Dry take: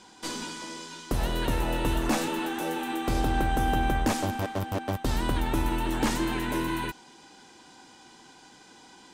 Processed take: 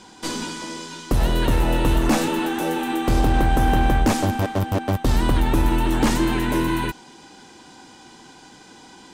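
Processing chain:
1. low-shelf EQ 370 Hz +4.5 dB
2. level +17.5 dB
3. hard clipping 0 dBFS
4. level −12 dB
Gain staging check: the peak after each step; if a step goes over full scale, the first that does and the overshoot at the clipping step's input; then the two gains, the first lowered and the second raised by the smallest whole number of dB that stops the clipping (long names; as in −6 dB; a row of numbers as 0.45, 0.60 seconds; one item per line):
−12.0, +5.5, 0.0, −12.0 dBFS
step 2, 5.5 dB
step 2 +11.5 dB, step 4 −6 dB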